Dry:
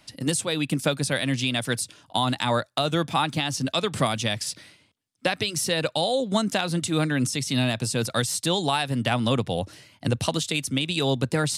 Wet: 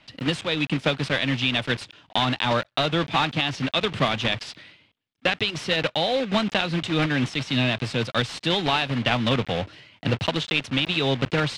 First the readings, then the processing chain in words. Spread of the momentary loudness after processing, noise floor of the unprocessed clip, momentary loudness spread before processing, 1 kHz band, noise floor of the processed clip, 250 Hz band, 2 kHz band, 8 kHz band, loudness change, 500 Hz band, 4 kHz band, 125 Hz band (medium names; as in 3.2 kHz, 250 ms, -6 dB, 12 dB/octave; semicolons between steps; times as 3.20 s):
5 LU, -61 dBFS, 5 LU, +1.0 dB, -63 dBFS, 0.0 dB, +4.0 dB, -13.0 dB, +1.0 dB, +0.5 dB, +2.5 dB, 0.0 dB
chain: block-companded coder 3-bit; resonant low-pass 3.1 kHz, resonance Q 1.6